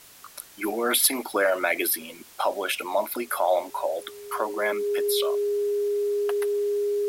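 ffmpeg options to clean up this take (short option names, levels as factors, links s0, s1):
-af "bandreject=f=410:w=30,afwtdn=0.0035"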